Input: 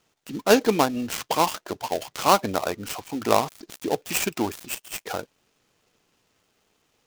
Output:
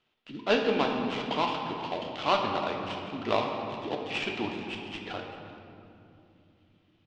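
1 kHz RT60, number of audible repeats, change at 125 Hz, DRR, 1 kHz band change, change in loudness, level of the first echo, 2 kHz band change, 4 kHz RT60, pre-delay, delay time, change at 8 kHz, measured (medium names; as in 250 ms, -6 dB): 2.5 s, 1, -4.5 dB, 1.0 dB, -5.5 dB, -5.5 dB, -18.0 dB, -3.0 dB, 1.5 s, 3 ms, 386 ms, -23.5 dB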